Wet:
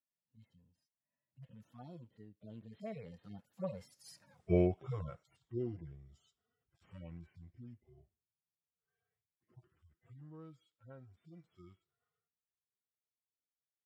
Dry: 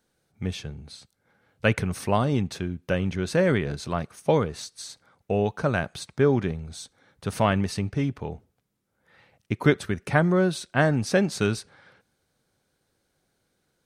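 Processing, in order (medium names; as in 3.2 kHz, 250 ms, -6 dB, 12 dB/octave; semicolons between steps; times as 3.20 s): harmonic-percussive separation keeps harmonic; Doppler pass-by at 4.35 s, 55 m/s, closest 5.2 m; trim +3.5 dB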